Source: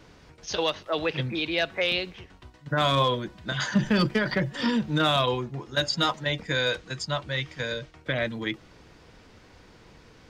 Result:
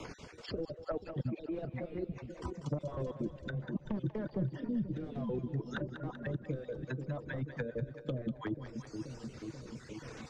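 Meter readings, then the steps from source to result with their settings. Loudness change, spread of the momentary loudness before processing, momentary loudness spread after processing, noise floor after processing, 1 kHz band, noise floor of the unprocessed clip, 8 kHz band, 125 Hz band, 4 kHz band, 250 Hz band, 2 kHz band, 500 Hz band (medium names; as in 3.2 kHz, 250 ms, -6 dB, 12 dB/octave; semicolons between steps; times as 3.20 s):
-13.0 dB, 9 LU, 8 LU, -54 dBFS, -20.0 dB, -54 dBFS, under -15 dB, -7.0 dB, -27.5 dB, -8.5 dB, -19.5 dB, -11.0 dB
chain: random holes in the spectrogram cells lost 33%; bass shelf 170 Hz -5 dB; reverb removal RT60 1.5 s; gate -52 dBFS, range -15 dB; peaking EQ 7.1 kHz +14 dB 1.3 oct; wavefolder -22.5 dBFS; reverse; compression 4:1, threshold -43 dBFS, peak gain reduction 14.5 dB; reverse; low-pass that closes with the level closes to 380 Hz, closed at -41 dBFS; rotary cabinet horn 0.65 Hz; on a send: two-band feedback delay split 500 Hz, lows 483 ms, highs 192 ms, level -10 dB; on the sum: three bands compressed up and down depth 70%; trim +13 dB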